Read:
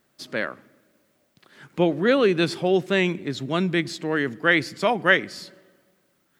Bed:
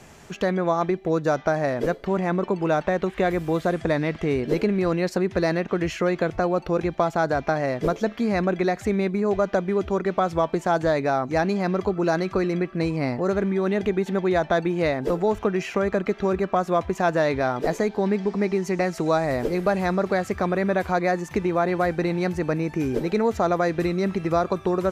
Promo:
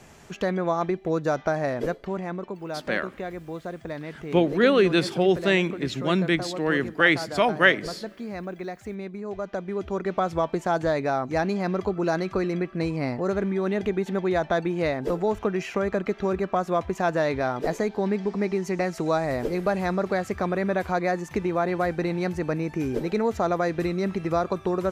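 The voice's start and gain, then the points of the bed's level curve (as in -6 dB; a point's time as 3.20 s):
2.55 s, 0.0 dB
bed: 1.78 s -2.5 dB
2.61 s -11.5 dB
9.24 s -11.5 dB
10.16 s -2.5 dB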